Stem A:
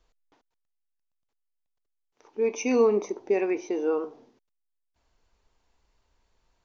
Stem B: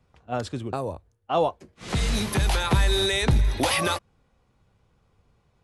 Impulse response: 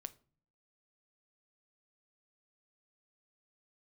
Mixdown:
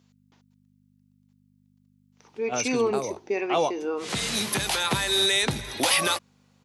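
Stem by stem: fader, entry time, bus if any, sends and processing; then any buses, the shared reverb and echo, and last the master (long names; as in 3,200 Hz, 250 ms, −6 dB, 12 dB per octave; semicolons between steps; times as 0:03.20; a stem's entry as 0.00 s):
−0.5 dB, 0.00 s, no send, parametric band 550 Hz −4 dB 1.7 octaves; mains hum 50 Hz, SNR 19 dB
−2.5 dB, 2.20 s, no send, no processing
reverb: not used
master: high-pass filter 170 Hz 12 dB per octave; high-shelf EQ 2,000 Hz +8 dB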